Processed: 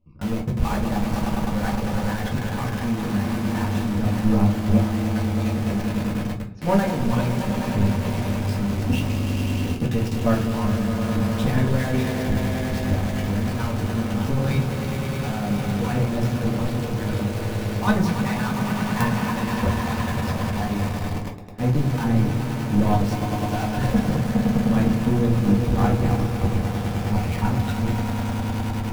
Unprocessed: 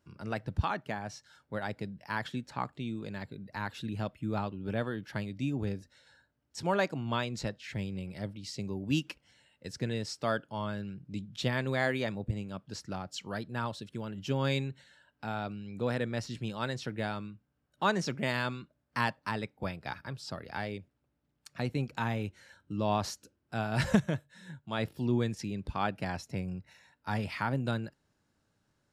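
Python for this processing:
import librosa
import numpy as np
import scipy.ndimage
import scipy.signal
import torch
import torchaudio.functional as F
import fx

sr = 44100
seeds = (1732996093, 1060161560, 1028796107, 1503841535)

p1 = fx.spec_dropout(x, sr, seeds[0], share_pct=29)
p2 = fx.riaa(p1, sr, side='playback')
p3 = p2 + fx.echo_swell(p2, sr, ms=102, loudest=5, wet_db=-10.5, dry=0)
p4 = fx.level_steps(p3, sr, step_db=12)
p5 = fx.quant_companded(p4, sr, bits=2)
p6 = p4 + (p5 * 10.0 ** (-5.0 / 20.0))
y = fx.room_shoebox(p6, sr, seeds[1], volume_m3=160.0, walls='furnished', distance_m=1.9)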